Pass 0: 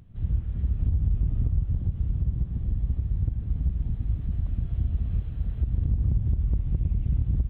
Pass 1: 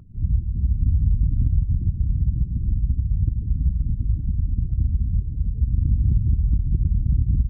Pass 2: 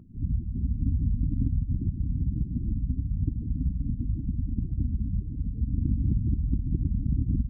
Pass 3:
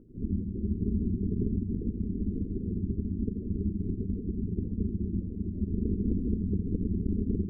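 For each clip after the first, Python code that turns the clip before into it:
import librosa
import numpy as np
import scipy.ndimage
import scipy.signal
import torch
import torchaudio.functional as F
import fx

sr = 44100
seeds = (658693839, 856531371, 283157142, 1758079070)

y1 = fx.spec_gate(x, sr, threshold_db=-30, keep='strong')
y1 = y1 * librosa.db_to_amplitude(5.0)
y2 = fx.small_body(y1, sr, hz=(270.0,), ring_ms=25, db=16)
y2 = y2 * librosa.db_to_amplitude(-8.5)
y3 = y2 * np.sin(2.0 * np.pi * 140.0 * np.arange(len(y2)) / sr)
y3 = y3 + 10.0 ** (-9.0 / 20.0) * np.pad(y3, (int(85 * sr / 1000.0), 0))[:len(y3)]
y3 = y3 * librosa.db_to_amplitude(-1.0)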